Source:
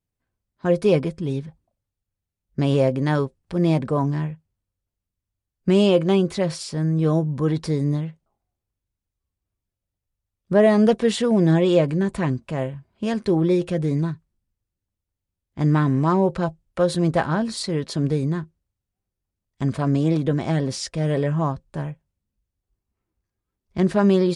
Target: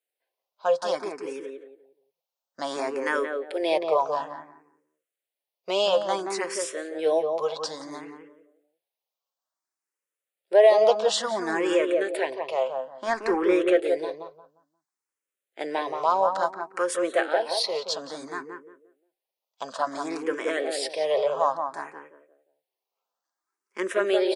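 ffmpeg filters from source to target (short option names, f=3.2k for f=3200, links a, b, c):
-filter_complex "[0:a]highpass=f=480:w=0.5412,highpass=f=480:w=1.3066,asplit=2[a][b];[b]alimiter=limit=-16.5dB:level=0:latency=1:release=353,volume=-1.5dB[c];[a][c]amix=inputs=2:normalize=0,asettb=1/sr,asplit=3[d][e][f];[d]atrim=end=12.894[g];[e]atrim=start=12.89:end=13.8,asetpts=PTS-STARTPTS,afade=t=in:d=0.004:c=qsin,afade=t=out:st=0.906:d=0.004:c=qsin,asplit=2[h][i];[i]highpass=f=720:p=1,volume=16dB,asoftclip=type=tanh:threshold=-7dB[j];[h][j]amix=inputs=2:normalize=0,lowpass=f=1.4k:p=1,volume=-6dB[k];[f]atrim=start=13.796[l];[g][k]acrossfade=d=0.004:c1=hsin:c2=qsin[m];[m][l]acrossfade=d=0.004:c1=qsin:c2=hsin,asplit=2[n][o];[o]adelay=176,lowpass=f=1.1k:p=1,volume=-3.5dB,asplit=2[p][q];[q]adelay=176,lowpass=f=1.1k:p=1,volume=0.31,asplit=2[r][s];[s]adelay=176,lowpass=f=1.1k:p=1,volume=0.31,asplit=2[t][u];[u]adelay=176,lowpass=f=1.1k:p=1,volume=0.31[v];[n][p][r][t][v]amix=inputs=5:normalize=0,asplit=2[w][x];[x]afreqshift=0.58[y];[w][y]amix=inputs=2:normalize=1"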